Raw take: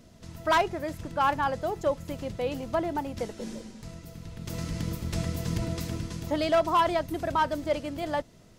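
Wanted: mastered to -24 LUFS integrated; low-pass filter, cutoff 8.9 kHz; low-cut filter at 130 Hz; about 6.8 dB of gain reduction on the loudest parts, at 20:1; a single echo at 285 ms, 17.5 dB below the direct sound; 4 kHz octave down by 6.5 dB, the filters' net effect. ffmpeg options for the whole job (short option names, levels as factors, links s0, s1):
-af "highpass=130,lowpass=8900,equalizer=f=4000:t=o:g=-9,acompressor=threshold=0.0501:ratio=20,aecho=1:1:285:0.133,volume=2.99"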